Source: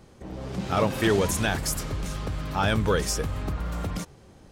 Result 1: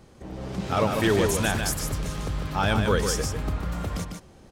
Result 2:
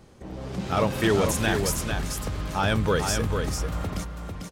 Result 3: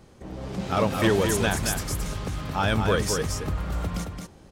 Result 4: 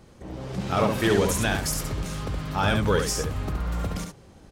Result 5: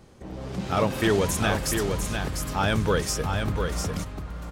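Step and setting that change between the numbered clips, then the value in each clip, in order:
delay, time: 149 ms, 447 ms, 221 ms, 70 ms, 699 ms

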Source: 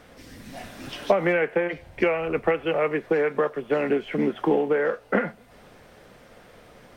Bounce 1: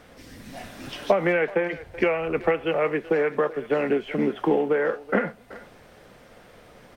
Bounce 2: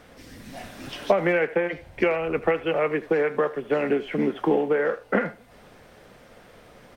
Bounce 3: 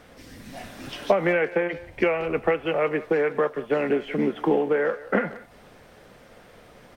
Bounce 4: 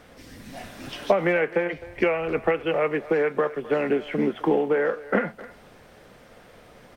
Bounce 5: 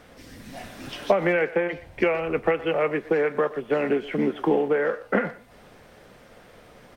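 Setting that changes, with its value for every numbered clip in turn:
speakerphone echo, time: 380 ms, 80 ms, 180 ms, 260 ms, 120 ms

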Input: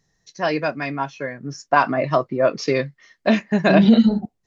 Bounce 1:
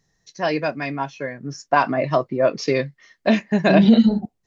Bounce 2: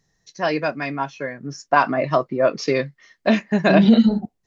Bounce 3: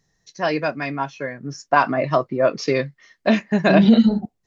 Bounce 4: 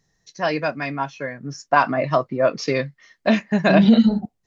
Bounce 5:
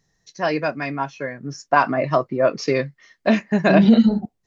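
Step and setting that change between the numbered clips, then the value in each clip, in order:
dynamic bell, frequency: 1.3 kHz, 110 Hz, 10 kHz, 370 Hz, 3.5 kHz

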